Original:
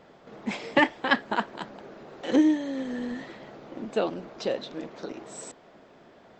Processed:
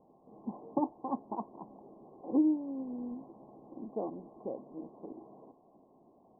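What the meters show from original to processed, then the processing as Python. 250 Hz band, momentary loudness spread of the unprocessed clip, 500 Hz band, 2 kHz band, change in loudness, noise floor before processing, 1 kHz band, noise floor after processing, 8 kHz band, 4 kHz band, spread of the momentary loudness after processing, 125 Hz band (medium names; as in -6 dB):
-6.5 dB, 20 LU, -10.5 dB, under -40 dB, -8.5 dB, -55 dBFS, -10.0 dB, -64 dBFS, no reading, under -40 dB, 22 LU, -9.0 dB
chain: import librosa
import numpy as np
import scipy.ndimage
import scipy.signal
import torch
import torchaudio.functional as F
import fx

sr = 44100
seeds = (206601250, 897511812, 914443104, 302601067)

y = scipy.signal.sosfilt(scipy.signal.cheby1(6, 6, 1100.0, 'lowpass', fs=sr, output='sos'), x)
y = y * librosa.db_to_amplitude(-6.0)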